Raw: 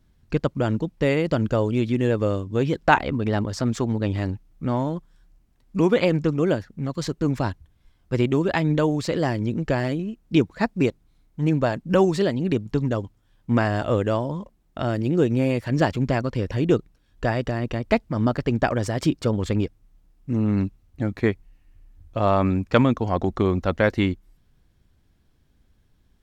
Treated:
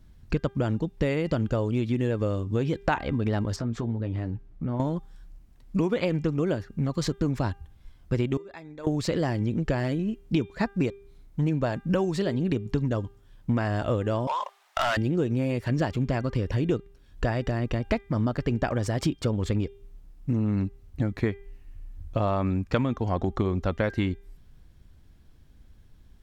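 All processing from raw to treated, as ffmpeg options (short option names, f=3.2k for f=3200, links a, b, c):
-filter_complex "[0:a]asettb=1/sr,asplit=3[a][b][c];[a]atrim=end=3.564[d];[b]atrim=start=3.56:end=4.8,asetpts=PTS-STARTPTS,afade=t=in:d=0.004:c=qsin,afade=t=out:st=1.236:d=0.004:c=qsin,acompressor=threshold=-33dB:ratio=3:attack=3.2:release=140:knee=1:detection=peak,lowpass=f=1.7k:p=1,asplit=2[e][f];[f]adelay=17,volume=-10dB[g];[e][g]amix=inputs=2:normalize=0,atrim=end_sample=54684[h];[c]atrim=start=4.796[i];[d][h]acrossfade=d=0.004:c1=hsin:c2=qsin[j];[j][i]acrossfade=d=0.004:c1=qsin:c2=hsin,asettb=1/sr,asplit=3[k][l][m];[k]atrim=end=8.374[n];[l]atrim=start=8.37:end=8.87,asetpts=PTS-STARTPTS,afade=t=in:d=0.004:c=qsin,afade=t=out:st=0.496:d=0.004:c=qsin,asuperstop=centerf=3000:order=20:qfactor=7.2,equalizer=f=120:w=0.86:g=-11.5,agate=range=-22dB:threshold=-19dB:ratio=16:release=100:detection=peak[o];[m]atrim=start=8.866[p];[n][o]acrossfade=d=0.004:c1=hsin:c2=qsin[q];[q][p]acrossfade=d=0.004:c1=qsin:c2=hsin,asettb=1/sr,asplit=3[r][s][t];[r]atrim=end=14.274[u];[s]atrim=start=14.27:end=14.97,asetpts=PTS-STARTPTS,afade=t=in:d=0.004:c=qsin,afade=t=out:st=0.696:d=0.004:c=qsin,highpass=f=770:w=0.5412,highpass=f=770:w=1.3066,highshelf=f=5.9k:g=-7,asplit=2[v][w];[w]highpass=f=720:p=1,volume=24dB,asoftclip=type=tanh:threshold=-16dB[x];[v][x]amix=inputs=2:normalize=0,lowpass=f=6.3k:p=1,volume=-6dB[y];[t]atrim=start=14.966[z];[u][y]acrossfade=d=0.004:c1=hsin:c2=qsin[aa];[aa][z]acrossfade=d=0.004:c1=qsin:c2=hsin,lowshelf=f=100:g=6.5,acompressor=threshold=-27dB:ratio=4,bandreject=f=398.6:t=h:w=4,bandreject=f=797.2:t=h:w=4,bandreject=f=1.1958k:t=h:w=4,bandreject=f=1.5944k:t=h:w=4,bandreject=f=1.993k:t=h:w=4,bandreject=f=2.3916k:t=h:w=4,bandreject=f=2.7902k:t=h:w=4,bandreject=f=3.1888k:t=h:w=4,bandreject=f=3.5874k:t=h:w=4,volume=3.5dB"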